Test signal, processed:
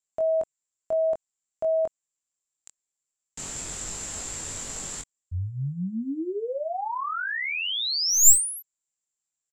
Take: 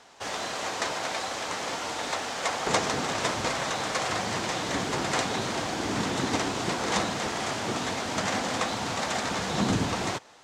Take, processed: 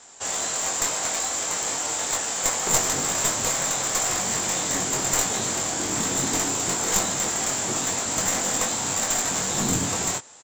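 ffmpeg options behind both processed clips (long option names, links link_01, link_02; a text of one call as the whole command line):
ffmpeg -i in.wav -filter_complex "[0:a]lowpass=frequency=7400:width_type=q:width=15,aeval=exprs='clip(val(0),-1,0.0841)':channel_layout=same,asplit=2[link_01][link_02];[link_02]adelay=22,volume=-5dB[link_03];[link_01][link_03]amix=inputs=2:normalize=0,volume=-1dB" out.wav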